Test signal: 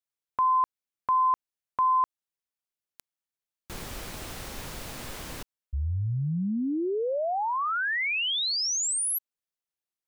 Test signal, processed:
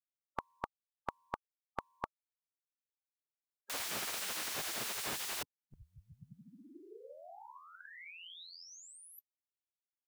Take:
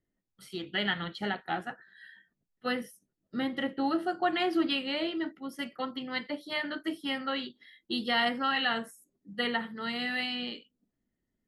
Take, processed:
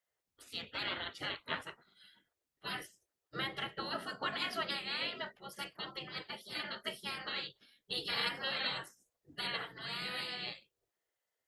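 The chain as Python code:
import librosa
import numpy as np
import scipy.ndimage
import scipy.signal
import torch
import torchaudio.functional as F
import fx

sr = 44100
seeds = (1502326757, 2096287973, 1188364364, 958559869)

y = fx.spec_gate(x, sr, threshold_db=-15, keep='weak')
y = y * 10.0 ** (3.5 / 20.0)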